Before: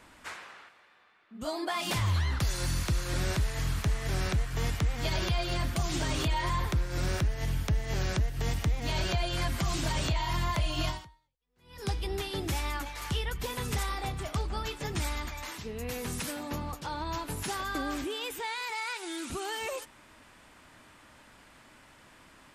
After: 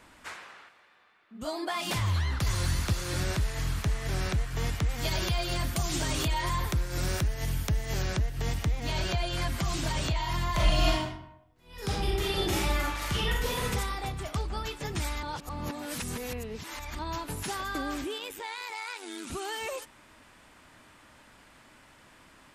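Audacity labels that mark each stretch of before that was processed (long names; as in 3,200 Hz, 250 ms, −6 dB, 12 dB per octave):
1.970000	2.740000	delay throw 490 ms, feedback 15%, level −4.5 dB
4.890000	8.020000	high-shelf EQ 7,300 Hz +9.5 dB
10.510000	13.640000	thrown reverb, RT60 0.81 s, DRR −4.5 dB
15.230000	16.990000	reverse
18.180000	19.270000	amplitude modulation modulator 100 Hz, depth 50%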